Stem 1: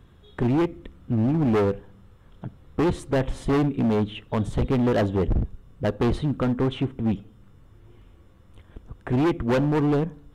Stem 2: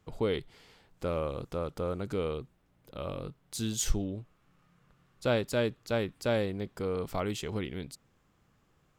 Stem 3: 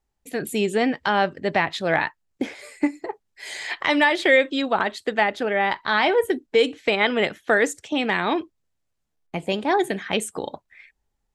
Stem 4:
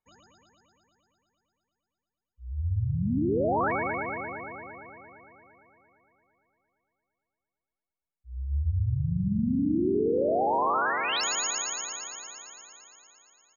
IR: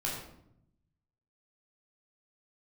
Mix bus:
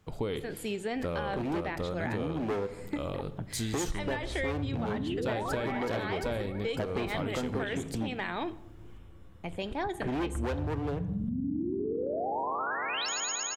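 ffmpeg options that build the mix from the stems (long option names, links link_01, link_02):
-filter_complex "[0:a]acrossover=split=290|3000[link_01][link_02][link_03];[link_01]acompressor=threshold=-32dB:ratio=6[link_04];[link_04][link_02][link_03]amix=inputs=3:normalize=0,adelay=950,volume=-2dB,asplit=2[link_05][link_06];[link_06]volume=-16dB[link_07];[1:a]volume=2dB,asplit=2[link_08][link_09];[link_09]volume=-16dB[link_10];[2:a]adelay=100,volume=-11dB,asplit=2[link_11][link_12];[link_12]volume=-18.5dB[link_13];[3:a]adelay=1850,volume=-2.5dB,asplit=2[link_14][link_15];[link_15]volume=-17.5dB[link_16];[4:a]atrim=start_sample=2205[link_17];[link_07][link_10][link_13][link_16]amix=inputs=4:normalize=0[link_18];[link_18][link_17]afir=irnorm=-1:irlink=0[link_19];[link_05][link_08][link_11][link_14][link_19]amix=inputs=5:normalize=0,acompressor=threshold=-29dB:ratio=6"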